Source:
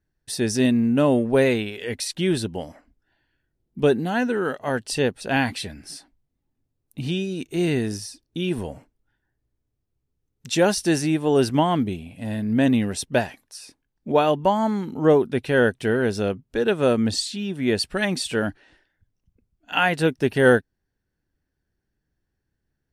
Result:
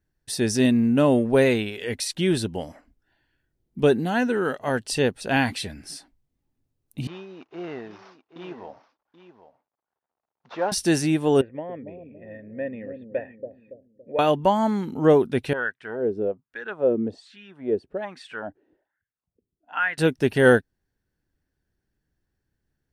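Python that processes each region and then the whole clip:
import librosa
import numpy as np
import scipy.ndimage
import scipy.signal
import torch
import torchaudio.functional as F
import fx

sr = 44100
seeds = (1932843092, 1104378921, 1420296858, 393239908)

y = fx.chain(x, sr, fx.cvsd(bps=32000),
    fx.bandpass_q(hz=890.0, q=1.7),
    fx.echo_single(ms=780, db=-13.0), at=(7.07, 10.72))
y = fx.chain(y, sr, fx.formant_cascade(vowel='e'),
    fx.echo_bbd(ms=281, stages=1024, feedback_pct=47, wet_db=-6.5), at=(11.41, 14.19))
y = fx.chain(y, sr, fx.low_shelf(hz=250.0, db=10.5),
    fx.wah_lfo(hz=1.2, low_hz=350.0, high_hz=1800.0, q=3.3), at=(15.53, 19.98))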